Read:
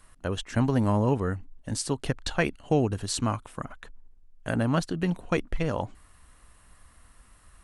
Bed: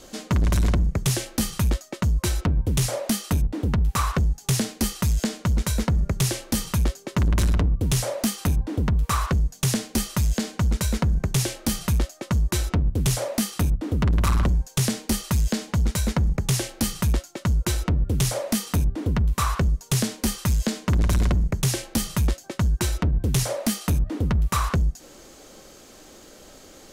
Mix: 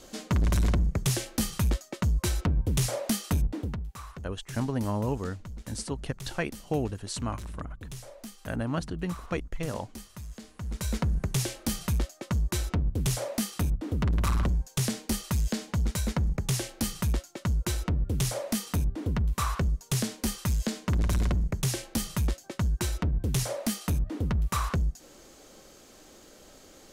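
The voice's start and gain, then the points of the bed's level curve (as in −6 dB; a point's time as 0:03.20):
4.00 s, −5.5 dB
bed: 0:03.53 −4 dB
0:03.95 −19.5 dB
0:10.50 −19.5 dB
0:10.91 −5.5 dB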